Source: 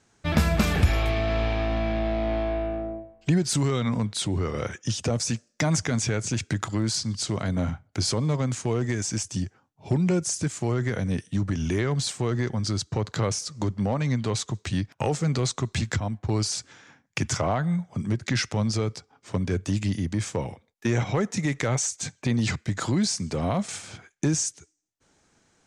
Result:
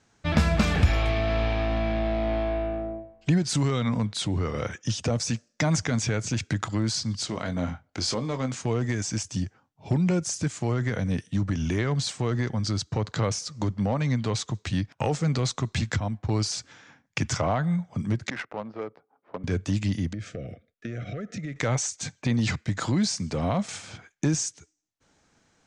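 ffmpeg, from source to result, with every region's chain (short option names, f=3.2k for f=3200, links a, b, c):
-filter_complex "[0:a]asettb=1/sr,asplit=3[a][b][c];[a]atrim=end=7.274[d];[b]atrim=start=7.27:end=8.61,asetpts=PTS-STARTPTS,afade=t=in:d=0.004:c=qsin,afade=t=out:st=1.336:d=0.004:c=qsin,lowpass=9.9k,equalizer=f=110:t=o:w=1.3:g=-9,asplit=2[e][f];[f]adelay=23,volume=-9dB[g];[e][g]amix=inputs=2:normalize=0,atrim=end_sample=59094[h];[c]atrim=start=8.606[i];[d][h]acrossfade=d=0.004:c1=hsin:c2=qsin[j];[j][i]acrossfade=d=0.004:c1=qsin:c2=hsin,asettb=1/sr,asplit=3[k][l][m];[k]atrim=end=18.304[n];[l]atrim=start=18.3:end=19.44,asetpts=PTS-STARTPTS,afade=t=in:d=0.004:c=qsin,afade=t=out:st=1.136:d=0.004:c=qsin,highpass=430,lowpass=3.1k,adynamicsmooth=sensitivity=2:basefreq=800[o];[m]atrim=start=19.436[p];[n][o]acrossfade=d=0.004:c1=hsin:c2=qsin[q];[q][p]acrossfade=d=0.004:c1=qsin:c2=hsin,asettb=1/sr,asplit=3[r][s][t];[r]atrim=end=20.134[u];[s]atrim=start=20.13:end=21.56,asetpts=PTS-STARTPTS,afade=t=in:d=0.004:c=qsin,afade=t=out:st=1.426:d=0.004:c=qsin,aemphasis=mode=reproduction:type=75fm,acompressor=threshold=-31dB:ratio=4:attack=3.2:release=140:knee=1:detection=peak,asuperstop=centerf=930:order=12:qfactor=2[v];[t]atrim=start=21.556[w];[u][v]acrossfade=d=0.004:c1=hsin:c2=qsin[x];[x][w]acrossfade=d=0.004:c1=qsin:c2=hsin,lowpass=7.1k,equalizer=f=380:w=6.8:g=-5"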